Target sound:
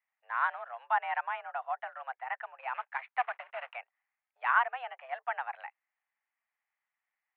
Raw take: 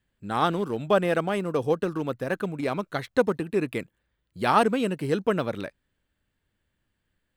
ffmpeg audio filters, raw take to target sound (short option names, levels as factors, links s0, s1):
-filter_complex "[0:a]asettb=1/sr,asplit=3[s0][s1][s2];[s0]atrim=end=2.744[s3];[s1]atrim=start=2.74:end=3.76,asetpts=PTS-STARTPTS,afade=t=in:d=0.004:c=qsin,afade=t=out:st=1.016:d=0.004:c=qsin,acrusher=bits=2:mode=log:mix=0:aa=0.000001[s4];[s2]atrim=start=3.756[s5];[s3][s4]acrossfade=d=0.004:c1=hsin:c2=qsin[s6];[s6][s5]acrossfade=d=0.004:c1=qsin:c2=hsin,highpass=f=560:t=q:w=0.5412,highpass=f=560:t=q:w=1.307,lowpass=f=2300:t=q:w=0.5176,lowpass=f=2300:t=q:w=0.7071,lowpass=f=2300:t=q:w=1.932,afreqshift=250,volume=0.562"